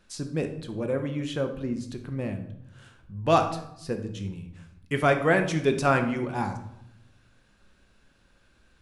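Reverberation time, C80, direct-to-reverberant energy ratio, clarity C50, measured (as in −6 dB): 0.75 s, 12.5 dB, 5.5 dB, 9.5 dB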